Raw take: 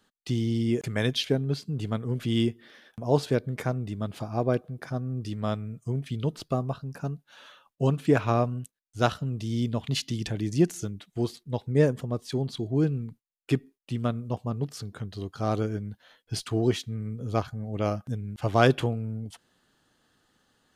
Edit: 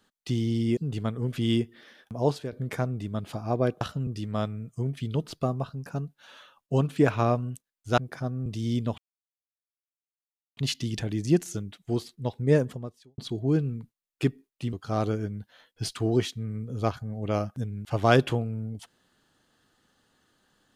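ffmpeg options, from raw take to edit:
ffmpeg -i in.wav -filter_complex "[0:a]asplit=10[link_01][link_02][link_03][link_04][link_05][link_06][link_07][link_08][link_09][link_10];[link_01]atrim=end=0.772[link_11];[link_02]atrim=start=1.638:end=3.39,asetpts=PTS-STARTPTS,afade=type=out:start_time=1.432:duration=0.32:silence=0.188365[link_12];[link_03]atrim=start=3.39:end=4.682,asetpts=PTS-STARTPTS,afade=type=in:duration=0.004:curve=hsin:silence=0.188365[link_13];[link_04]atrim=start=9.068:end=9.332[link_14];[link_05]atrim=start=5.158:end=9.072[link_15];[link_06]atrim=start=4.678:end=5.162[link_16];[link_07]atrim=start=9.328:end=9.85,asetpts=PTS-STARTPTS,afade=type=out:start_time=0.518:duration=0.004:curve=hsin,apad=pad_dur=1.59[link_17];[link_08]atrim=start=9.85:end=12.46,asetpts=PTS-STARTPTS,afade=type=in:duration=0.004:curve=hsin,afade=type=out:start_time=2.11:duration=0.5:curve=qua[link_18];[link_09]atrim=start=12.46:end=14.012,asetpts=PTS-STARTPTS,afade=type=in:duration=0.004:curve=hsin[link_19];[link_10]atrim=start=15.238[link_20];[link_12][link_13]concat=n=2:v=0:a=1[link_21];[link_11][link_21]acrossfade=duration=0.004:curve1=hsin:curve2=hsin[link_22];[link_22][link_14]acrossfade=duration=0.004:curve1=hsin:curve2=hsin[link_23];[link_23][link_15]acrossfade=duration=0.004:curve1=hsin:curve2=hsin[link_24];[link_24][link_16]acrossfade=duration=0.004:curve1=hsin:curve2=hsin[link_25];[link_17][link_18][link_19]concat=n=3:v=0:a=1[link_26];[link_25][link_26]acrossfade=duration=0.004:curve1=hsin:curve2=hsin[link_27];[link_27][link_20]acrossfade=duration=0.004:curve1=hsin:curve2=hsin" out.wav

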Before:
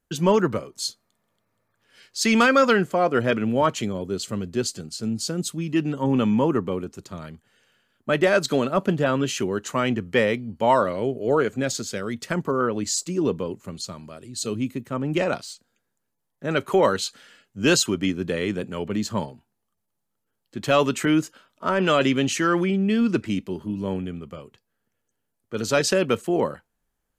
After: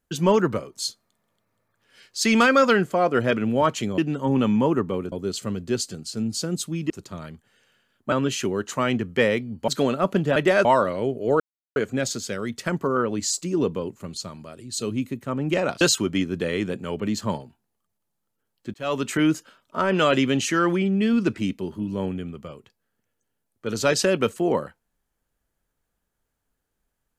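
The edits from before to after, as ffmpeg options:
ffmpeg -i in.wav -filter_complex "[0:a]asplit=11[link_01][link_02][link_03][link_04][link_05][link_06][link_07][link_08][link_09][link_10][link_11];[link_01]atrim=end=3.982[link_12];[link_02]atrim=start=5.758:end=6.902[link_13];[link_03]atrim=start=3.978:end=5.762[link_14];[link_04]atrim=start=6.898:end=8.122[link_15];[link_05]atrim=start=9.088:end=10.652[link_16];[link_06]atrim=start=8.408:end=9.092[link_17];[link_07]atrim=start=8.118:end=8.412[link_18];[link_08]atrim=start=10.648:end=11.4,asetpts=PTS-STARTPTS,afade=type=out:start_time=0.748:duration=0.004:curve=hsin,apad=pad_dur=0.36[link_19];[link_09]atrim=start=11.4:end=15.452,asetpts=PTS-STARTPTS,afade=type=in:duration=0.004:curve=hsin[link_20];[link_10]atrim=start=17.688:end=20.62,asetpts=PTS-STARTPTS,afade=type=out:start_time=2.928:duration=0.004:curve=hsin[link_21];[link_11]atrim=start=20.62,asetpts=PTS-STARTPTS,afade=type=in:duration=0.55:curve=qsin[link_22];[link_12][link_13]acrossfade=duration=0.004:curve1=hsin:curve2=hsin[link_23];[link_23][link_14]acrossfade=duration=0.004:curve1=hsin:curve2=hsin[link_24];[link_24][link_15]acrossfade=duration=0.004:curve1=hsin:curve2=hsin[link_25];[link_25][link_16]acrossfade=duration=0.004:curve1=hsin:curve2=hsin[link_26];[link_26][link_17]acrossfade=duration=0.004:curve1=hsin:curve2=hsin[link_27];[link_27][link_18]acrossfade=duration=0.004:curve1=hsin:curve2=hsin[link_28];[link_19][link_20]concat=n=2:v=0:a=1[link_29];[link_28][link_29]acrossfade=duration=0.004:curve1=hsin:curve2=hsin[link_30];[link_21][link_22]concat=n=2:v=0:a=1[link_31];[link_30][link_31]acrossfade=duration=0.004:curve1=hsin:curve2=hsin" out.wav

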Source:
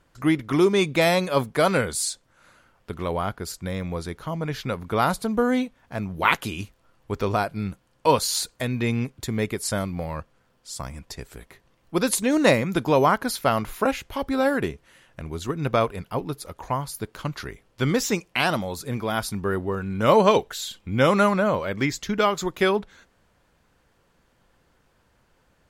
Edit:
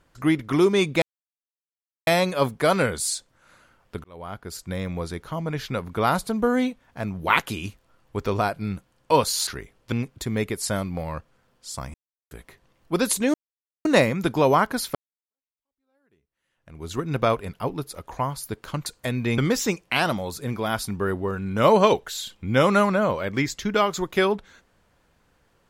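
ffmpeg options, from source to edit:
ffmpeg -i in.wav -filter_complex "[0:a]asplit=11[link_01][link_02][link_03][link_04][link_05][link_06][link_07][link_08][link_09][link_10][link_11];[link_01]atrim=end=1.02,asetpts=PTS-STARTPTS,afade=type=out:start_time=1.016:duration=0.004:curve=hsin,apad=pad_dur=1.05[link_12];[link_02]atrim=start=1.02:end=2.99,asetpts=PTS-STARTPTS,afade=type=in:duration=0.004:curve=hsin,afade=type=out:start_time=1.966:duration=0.004:curve=hsin[link_13];[link_03]atrim=start=2.99:end=8.422,asetpts=PTS-STARTPTS,afade=type=in:duration=0.68[link_14];[link_04]atrim=start=17.368:end=17.822[link_15];[link_05]atrim=start=8.938:end=10.96,asetpts=PTS-STARTPTS,afade=type=out:start_time=2.018:duration=0.004:curve=hsin[link_16];[link_06]atrim=start=10.96:end=11.33,asetpts=PTS-STARTPTS,volume=0[link_17];[link_07]atrim=start=11.33:end=12.36,asetpts=PTS-STARTPTS,afade=type=in:duration=0.004:curve=hsin,afade=type=out:start_time=1.026:duration=0.004:curve=hsin,apad=pad_dur=0.51[link_18];[link_08]atrim=start=12.36:end=13.46,asetpts=PTS-STARTPTS,afade=type=in:duration=0.004:curve=hsin,afade=type=out:start_time=1.096:duration=0.004:curve=hsin[link_19];[link_09]atrim=start=13.46:end=17.372,asetpts=PTS-STARTPTS,afade=type=in:duration=1.96:curve=exp[link_20];[link_10]atrim=start=8.418:end=8.942[link_21];[link_11]atrim=start=17.818[link_22];[link_12][link_13][link_14]concat=n=3:v=0:a=1[link_23];[link_23][link_15]acrossfade=duration=0.004:curve1=hsin:curve2=hsin[link_24];[link_16][link_17][link_18][link_19][link_20]concat=n=5:v=0:a=1[link_25];[link_24][link_25]acrossfade=duration=0.004:curve1=hsin:curve2=hsin[link_26];[link_26][link_21]acrossfade=duration=0.004:curve1=hsin:curve2=hsin[link_27];[link_27][link_22]acrossfade=duration=0.004:curve1=hsin:curve2=hsin" out.wav

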